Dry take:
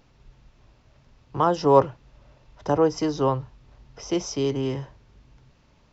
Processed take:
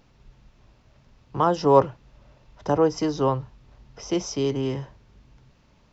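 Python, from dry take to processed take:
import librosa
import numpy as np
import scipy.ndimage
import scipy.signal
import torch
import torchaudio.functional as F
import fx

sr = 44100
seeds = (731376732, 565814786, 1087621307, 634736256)

y = fx.peak_eq(x, sr, hz=200.0, db=4.0, octaves=0.23)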